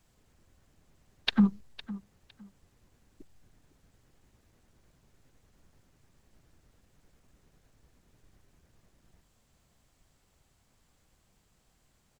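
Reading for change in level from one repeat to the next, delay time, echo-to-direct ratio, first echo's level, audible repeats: −13.0 dB, 508 ms, −17.0 dB, −17.0 dB, 2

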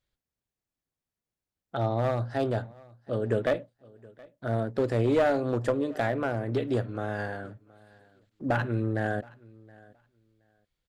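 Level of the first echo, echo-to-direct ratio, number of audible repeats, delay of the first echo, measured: −24.0 dB, −24.0 dB, 1, 721 ms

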